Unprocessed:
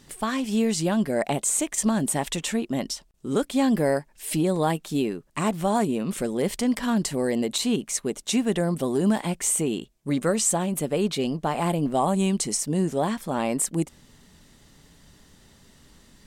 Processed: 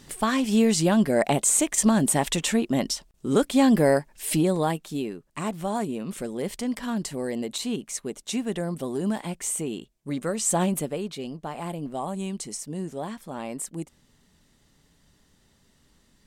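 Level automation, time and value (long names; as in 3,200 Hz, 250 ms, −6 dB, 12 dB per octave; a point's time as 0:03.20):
0:04.26 +3 dB
0:04.99 −5 dB
0:10.40 −5 dB
0:10.63 +4 dB
0:11.05 −8.5 dB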